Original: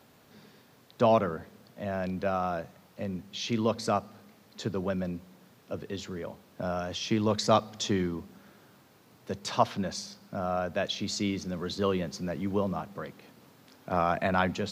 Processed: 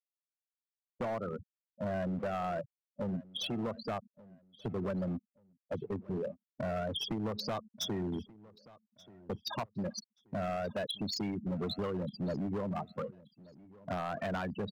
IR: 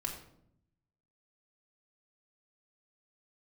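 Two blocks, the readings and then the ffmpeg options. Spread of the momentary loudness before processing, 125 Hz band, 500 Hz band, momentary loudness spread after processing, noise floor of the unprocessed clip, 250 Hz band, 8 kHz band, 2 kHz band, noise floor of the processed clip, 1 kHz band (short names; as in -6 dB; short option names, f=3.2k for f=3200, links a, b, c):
14 LU, -4.5 dB, -7.5 dB, 8 LU, -59 dBFS, -5.0 dB, -8.5 dB, -8.5 dB, under -85 dBFS, -9.5 dB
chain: -filter_complex "[0:a]afftfilt=real='re*gte(hypot(re,im),0.0501)':imag='im*gte(hypot(re,im),0.0501)':win_size=1024:overlap=0.75,agate=range=-7dB:threshold=-46dB:ratio=16:detection=peak,acompressor=threshold=-33dB:ratio=20,asoftclip=type=hard:threshold=-35dB,asplit=2[a][b];[b]adelay=1181,lowpass=f=5k:p=1,volume=-21dB,asplit=2[c][d];[d]adelay=1181,lowpass=f=5k:p=1,volume=0.29[e];[a][c][e]amix=inputs=3:normalize=0,volume=4dB"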